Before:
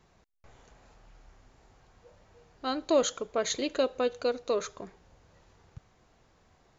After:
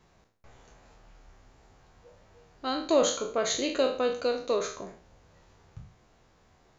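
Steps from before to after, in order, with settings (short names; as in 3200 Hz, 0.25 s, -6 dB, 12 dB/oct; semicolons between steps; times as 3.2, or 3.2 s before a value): spectral trails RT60 0.46 s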